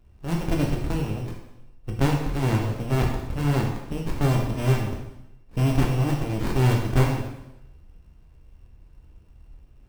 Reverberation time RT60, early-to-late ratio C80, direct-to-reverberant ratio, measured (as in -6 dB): 0.90 s, 6.0 dB, -0.5 dB